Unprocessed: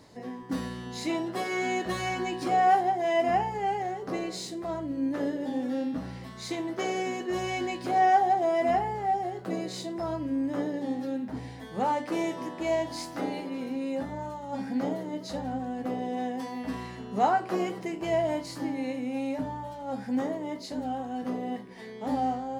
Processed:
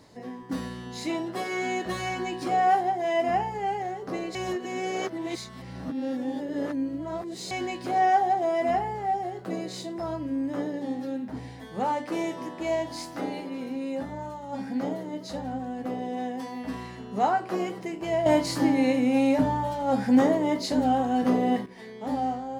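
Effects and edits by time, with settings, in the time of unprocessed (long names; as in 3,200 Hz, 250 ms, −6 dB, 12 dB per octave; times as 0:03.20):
0:04.35–0:07.51: reverse
0:18.26–0:21.66: clip gain +9.5 dB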